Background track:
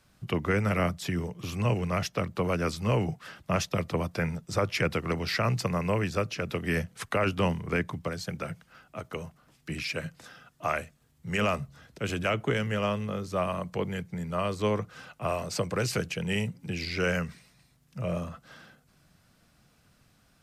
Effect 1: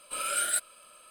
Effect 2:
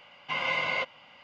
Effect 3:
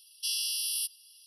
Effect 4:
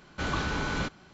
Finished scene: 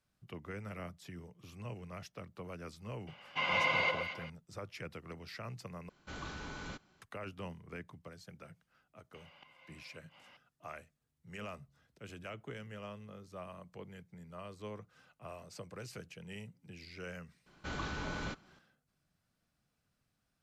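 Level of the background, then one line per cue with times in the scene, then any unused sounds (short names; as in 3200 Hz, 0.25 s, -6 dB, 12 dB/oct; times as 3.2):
background track -18 dB
3.07 add 2 -3 dB + echo with dull and thin repeats by turns 0.116 s, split 1400 Hz, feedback 51%, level -2.5 dB
5.89 replace with 4 -14.5 dB + high shelf 6800 Hz +6 dB
9.14 add 2 -7 dB + flipped gate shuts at -36 dBFS, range -26 dB
17.46 add 4 -9.5 dB
not used: 1, 3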